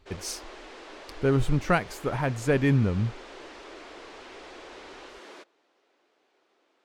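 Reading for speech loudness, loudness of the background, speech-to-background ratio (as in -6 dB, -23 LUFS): -26.5 LUFS, -45.0 LUFS, 18.5 dB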